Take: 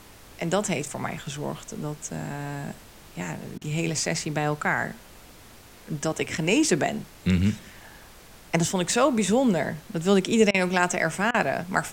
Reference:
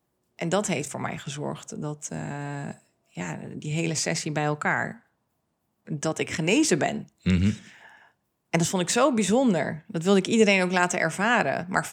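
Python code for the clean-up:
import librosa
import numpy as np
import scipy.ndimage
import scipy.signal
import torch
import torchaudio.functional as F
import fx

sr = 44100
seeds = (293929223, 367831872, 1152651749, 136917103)

y = fx.fix_interpolate(x, sr, at_s=(3.58, 10.51, 11.31), length_ms=32.0)
y = fx.noise_reduce(y, sr, print_start_s=5.31, print_end_s=5.81, reduce_db=25.0)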